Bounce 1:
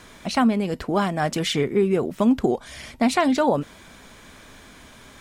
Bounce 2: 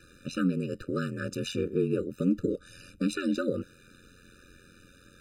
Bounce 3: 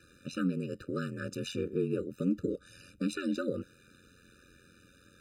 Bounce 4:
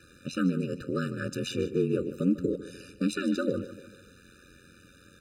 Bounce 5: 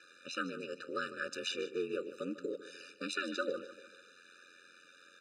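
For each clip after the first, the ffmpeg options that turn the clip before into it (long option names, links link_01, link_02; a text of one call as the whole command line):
ffmpeg -i in.wav -af "aeval=exprs='val(0)*sin(2*PI*44*n/s)':channel_layout=same,afftfilt=real='re*eq(mod(floor(b*sr/1024/590),2),0)':imag='im*eq(mod(floor(b*sr/1024/590),2),0)':win_size=1024:overlap=0.75,volume=-4.5dB" out.wav
ffmpeg -i in.wav -af "highpass=46,volume=-4dB" out.wav
ffmpeg -i in.wav -af "aecho=1:1:149|298|447|596:0.188|0.0885|0.0416|0.0196,volume=4.5dB" out.wav
ffmpeg -i in.wav -af "highpass=650,lowpass=6200" out.wav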